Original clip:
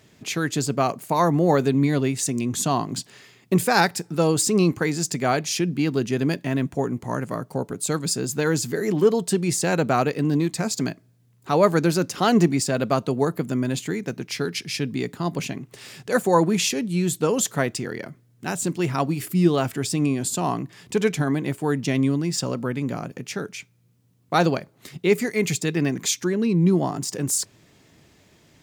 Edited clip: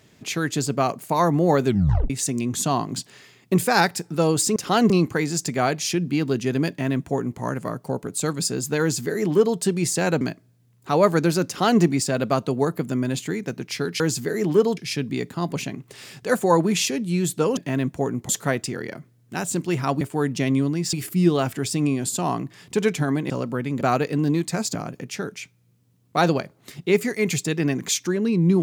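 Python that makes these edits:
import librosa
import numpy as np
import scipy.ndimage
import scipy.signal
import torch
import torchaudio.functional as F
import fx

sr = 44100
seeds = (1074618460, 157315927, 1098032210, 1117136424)

y = fx.edit(x, sr, fx.tape_stop(start_s=1.66, length_s=0.44),
    fx.duplicate(start_s=6.35, length_s=0.72, to_s=17.4),
    fx.duplicate(start_s=8.47, length_s=0.77, to_s=14.6),
    fx.move(start_s=9.87, length_s=0.94, to_s=22.92),
    fx.duplicate(start_s=12.07, length_s=0.34, to_s=4.56),
    fx.move(start_s=21.49, length_s=0.92, to_s=19.12), tone=tone)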